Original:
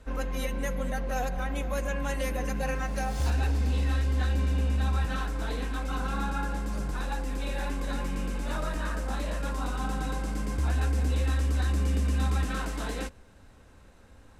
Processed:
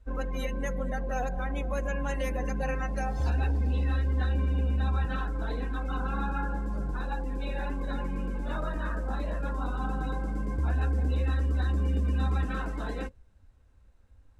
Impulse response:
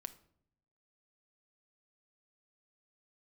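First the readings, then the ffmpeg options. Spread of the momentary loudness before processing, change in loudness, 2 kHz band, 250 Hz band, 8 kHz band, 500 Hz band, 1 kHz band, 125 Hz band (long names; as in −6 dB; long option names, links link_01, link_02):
6 LU, −0.5 dB, −2.0 dB, −0.5 dB, −10.5 dB, −0.5 dB, −1.0 dB, −0.5 dB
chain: -filter_complex "[0:a]asplit=2[link_01][link_02];[1:a]atrim=start_sample=2205,highshelf=frequency=3600:gain=-8[link_03];[link_02][link_03]afir=irnorm=-1:irlink=0,volume=-9.5dB[link_04];[link_01][link_04]amix=inputs=2:normalize=0,afftdn=noise_reduction=15:noise_floor=-39,volume=-2dB"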